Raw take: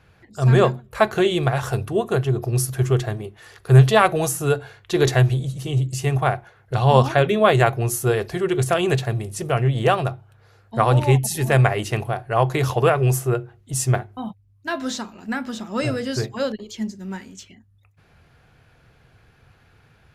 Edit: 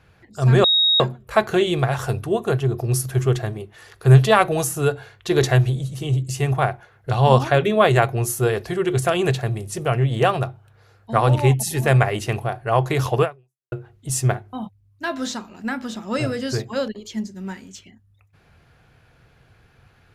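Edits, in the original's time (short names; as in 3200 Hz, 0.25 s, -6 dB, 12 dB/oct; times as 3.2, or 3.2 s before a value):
0.64 add tone 3770 Hz -13.5 dBFS 0.36 s
12.86–13.36 fade out exponential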